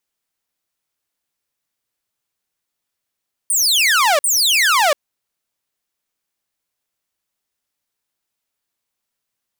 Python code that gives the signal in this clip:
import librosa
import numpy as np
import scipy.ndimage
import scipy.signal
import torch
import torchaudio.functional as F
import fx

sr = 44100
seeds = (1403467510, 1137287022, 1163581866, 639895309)

y = fx.laser_zaps(sr, level_db=-9, start_hz=9500.0, end_hz=550.0, length_s=0.69, wave='saw', shots=2, gap_s=0.05)